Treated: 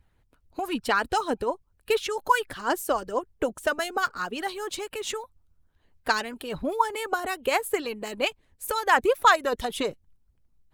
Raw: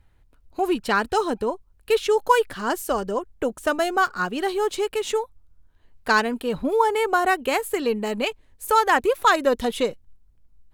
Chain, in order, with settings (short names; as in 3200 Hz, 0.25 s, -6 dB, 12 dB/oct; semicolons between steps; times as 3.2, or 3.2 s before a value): harmonic-percussive split harmonic -12 dB